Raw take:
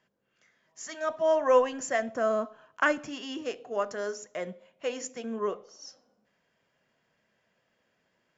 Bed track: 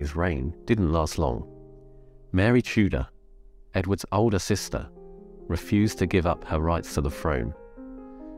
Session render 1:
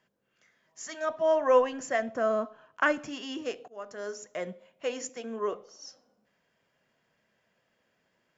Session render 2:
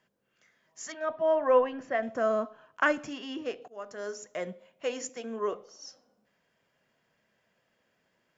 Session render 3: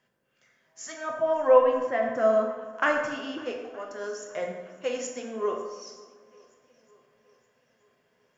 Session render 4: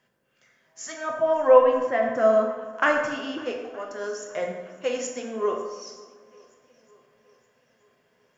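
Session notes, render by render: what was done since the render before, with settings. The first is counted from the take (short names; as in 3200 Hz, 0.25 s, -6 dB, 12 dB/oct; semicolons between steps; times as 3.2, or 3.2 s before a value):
1.05–2.94 air absorption 58 m; 3.68–4.28 fade in, from -23 dB; 5.09–5.53 HPF 250 Hz
0.92–2.03 air absorption 260 m; 3.13–3.62 air absorption 120 m
swung echo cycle 0.92 s, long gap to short 1.5:1, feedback 39%, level -24 dB; plate-style reverb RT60 1.2 s, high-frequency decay 0.6×, pre-delay 0 ms, DRR 1 dB
gain +3 dB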